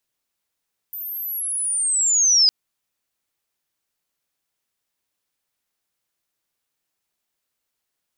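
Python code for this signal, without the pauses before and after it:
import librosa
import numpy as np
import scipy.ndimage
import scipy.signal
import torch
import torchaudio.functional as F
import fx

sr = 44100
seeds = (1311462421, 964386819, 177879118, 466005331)

y = fx.chirp(sr, length_s=1.56, from_hz=14000.0, to_hz=4900.0, law='linear', from_db=-29.0, to_db=-11.0)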